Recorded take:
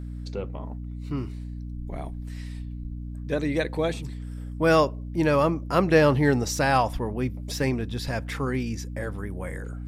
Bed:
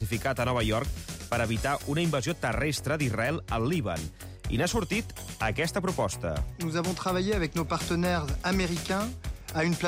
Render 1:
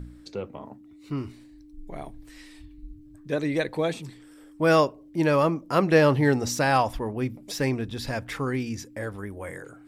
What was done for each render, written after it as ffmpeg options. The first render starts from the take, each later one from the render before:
ffmpeg -i in.wav -af "bandreject=frequency=60:width_type=h:width=4,bandreject=frequency=120:width_type=h:width=4,bandreject=frequency=180:width_type=h:width=4,bandreject=frequency=240:width_type=h:width=4" out.wav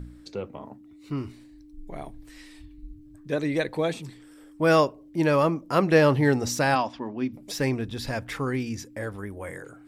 ffmpeg -i in.wav -filter_complex "[0:a]asplit=3[link_01][link_02][link_03];[link_01]afade=type=out:start_time=6.74:duration=0.02[link_04];[link_02]highpass=220,equalizer=frequency=260:width_type=q:width=4:gain=5,equalizer=frequency=470:width_type=q:width=4:gain=-10,equalizer=frequency=760:width_type=q:width=4:gain=-4,equalizer=frequency=1300:width_type=q:width=4:gain=-4,equalizer=frequency=2000:width_type=q:width=4:gain=-4,lowpass=frequency=5600:width=0.5412,lowpass=frequency=5600:width=1.3066,afade=type=in:start_time=6.74:duration=0.02,afade=type=out:start_time=7.32:duration=0.02[link_05];[link_03]afade=type=in:start_time=7.32:duration=0.02[link_06];[link_04][link_05][link_06]amix=inputs=3:normalize=0" out.wav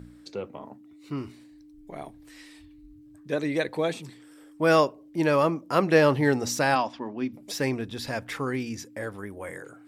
ffmpeg -i in.wav -af "highpass=frequency=170:poles=1" out.wav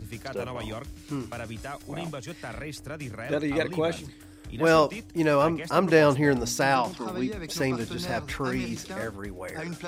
ffmpeg -i in.wav -i bed.wav -filter_complex "[1:a]volume=-9dB[link_01];[0:a][link_01]amix=inputs=2:normalize=0" out.wav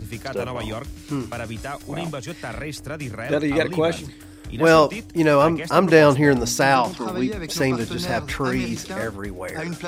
ffmpeg -i in.wav -af "volume=6dB,alimiter=limit=-2dB:level=0:latency=1" out.wav

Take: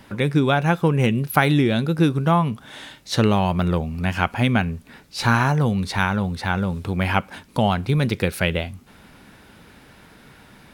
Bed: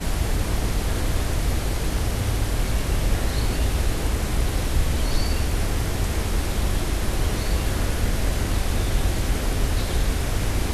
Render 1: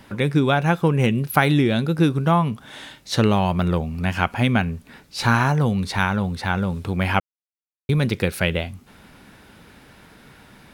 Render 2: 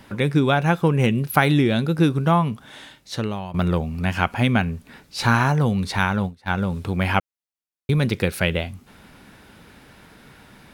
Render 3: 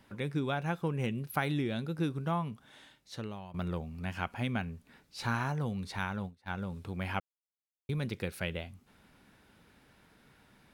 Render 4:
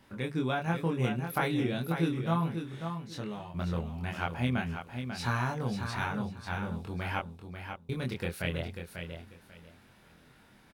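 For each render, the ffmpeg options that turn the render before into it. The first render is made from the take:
ffmpeg -i in.wav -filter_complex "[0:a]asplit=3[link_01][link_02][link_03];[link_01]atrim=end=7.2,asetpts=PTS-STARTPTS,afade=type=out:start_time=7.196:duration=0.004:curve=hsin[link_04];[link_02]atrim=start=7.2:end=7.89,asetpts=PTS-STARTPTS,volume=0[link_05];[link_03]atrim=start=7.89,asetpts=PTS-STARTPTS,afade=type=in:duration=0.004:curve=hsin[link_06];[link_04][link_05][link_06]concat=n=3:v=0:a=1" out.wav
ffmpeg -i in.wav -filter_complex "[0:a]asplit=3[link_01][link_02][link_03];[link_01]afade=type=out:start_time=6.11:duration=0.02[link_04];[link_02]agate=range=-23dB:threshold=-24dB:ratio=16:release=100:detection=peak,afade=type=in:start_time=6.11:duration=0.02,afade=type=out:start_time=6.69:duration=0.02[link_05];[link_03]afade=type=in:start_time=6.69:duration=0.02[link_06];[link_04][link_05][link_06]amix=inputs=3:normalize=0,asplit=2[link_07][link_08];[link_07]atrim=end=3.54,asetpts=PTS-STARTPTS,afade=type=out:start_time=2.36:duration=1.18:silence=0.188365[link_09];[link_08]atrim=start=3.54,asetpts=PTS-STARTPTS,afade=type=in:duration=0.004:curve=hsin:silence=0.188365[link_10];[link_09][link_10]concat=n=2:v=0:a=1" out.wav
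ffmpeg -i in.wav -af "volume=-14.5dB" out.wav
ffmpeg -i in.wav -filter_complex "[0:a]asplit=2[link_01][link_02];[link_02]adelay=24,volume=-2dB[link_03];[link_01][link_03]amix=inputs=2:normalize=0,asplit=2[link_04][link_05];[link_05]aecho=0:1:542|1084|1626:0.422|0.0886|0.0186[link_06];[link_04][link_06]amix=inputs=2:normalize=0" out.wav

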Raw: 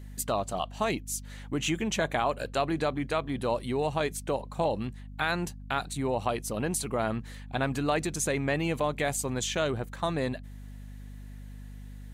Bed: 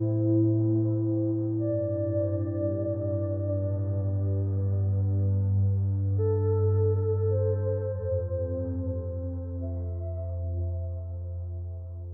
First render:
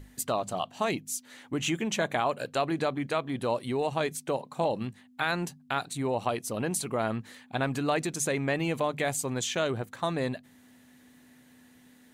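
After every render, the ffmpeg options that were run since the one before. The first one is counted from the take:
ffmpeg -i in.wav -af "bandreject=frequency=50:width_type=h:width=6,bandreject=frequency=100:width_type=h:width=6,bandreject=frequency=150:width_type=h:width=6,bandreject=frequency=200:width_type=h:width=6" out.wav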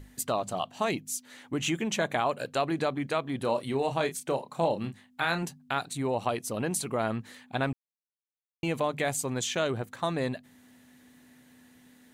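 ffmpeg -i in.wav -filter_complex "[0:a]asettb=1/sr,asplit=3[link_01][link_02][link_03];[link_01]atrim=end=3.384[link_04];[link_02]atrim=start=3.38:end=5.43,asetpts=PTS-STARTPTS,afade=type=in:duration=0.004:curve=qsin,afade=type=out:start_time=2.046:duration=0.004:curve=qsin,asplit=2[link_05][link_06];[link_06]adelay=30,volume=-8.5dB[link_07];[link_05][link_07]amix=inputs=2:normalize=0,atrim=end_sample=90405[link_08];[link_03]atrim=start=5.426[link_09];[link_04][link_08]acrossfade=duration=0.004:curve1=hsin:curve2=qsin[link_10];[link_10][link_09]acrossfade=duration=0.004:curve1=qsin:curve2=hsin,asplit=3[link_11][link_12][link_13];[link_11]atrim=end=7.73,asetpts=PTS-STARTPTS,afade=type=out:start_time=7.726:duration=0.004:curve=hsin[link_14];[link_12]atrim=start=7.73:end=8.63,asetpts=PTS-STARTPTS,volume=0[link_15];[link_13]atrim=start=8.63,asetpts=PTS-STARTPTS,afade=type=in:duration=0.004:curve=hsin[link_16];[link_14][link_15][link_16]concat=n=3:v=0:a=1" out.wav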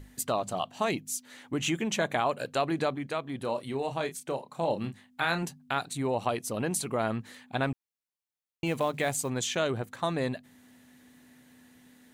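ffmpeg -i in.wav -filter_complex "[0:a]asettb=1/sr,asplit=3[link_01][link_02][link_03];[link_01]atrim=end=8.664[link_04];[link_02]atrim=start=8.66:end=9.29,asetpts=PTS-STARTPTS,afade=type=in:duration=0.004:curve=qsin,afade=type=out:start_time=0.626:duration=0.004:curve=qsin,acrusher=bits=7:mode=log:mix=0:aa=0.000001[link_05];[link_03]atrim=start=9.286[link_06];[link_04][link_05]acrossfade=duration=0.004:curve1=hsin:curve2=qsin[link_07];[link_07][link_06]acrossfade=duration=0.004:curve1=qsin:curve2=hsin,asplit=3[link_08][link_09][link_10];[link_08]atrim=end=2.962[link_11];[link_09]atrim=start=2.958:end=4.682,asetpts=PTS-STARTPTS,volume=-3.5dB[link_12];[link_10]atrim=start=4.678[link_13];[link_11][link_12]acrossfade=duration=0.004:curve1=hsin:curve2=hsin[link_14];[link_14][link_13]acrossfade=duration=0.004:curve1=hsin:curve2=hsin" out.wav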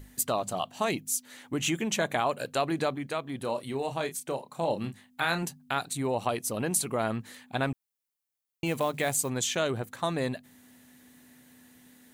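ffmpeg -i in.wav -af "highshelf=frequency=8500:gain=9" out.wav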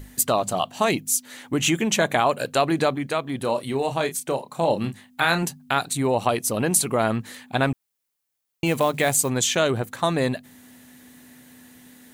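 ffmpeg -i in.wav -af "volume=7.5dB" out.wav

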